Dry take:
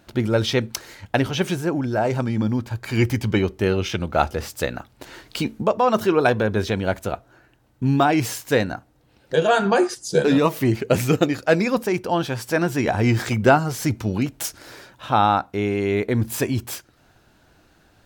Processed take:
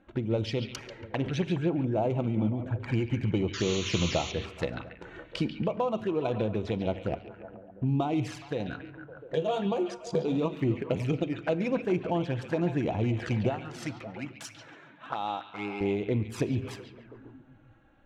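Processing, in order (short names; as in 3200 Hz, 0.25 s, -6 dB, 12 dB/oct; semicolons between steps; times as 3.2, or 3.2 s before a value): Wiener smoothing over 9 samples; 13.5–15.81 HPF 760 Hz 6 dB/oct; compressor 10:1, threshold -21 dBFS, peak gain reduction 11.5 dB; 3.53–4.32 painted sound noise 980–7200 Hz -30 dBFS; envelope flanger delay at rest 3.9 ms, full sweep at -22 dBFS; air absorption 82 m; delay with a stepping band-pass 0.14 s, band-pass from 3100 Hz, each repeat -0.7 oct, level -5 dB; reverb RT60 0.85 s, pre-delay 6 ms, DRR 12.5 dB; noise-modulated level, depth 55%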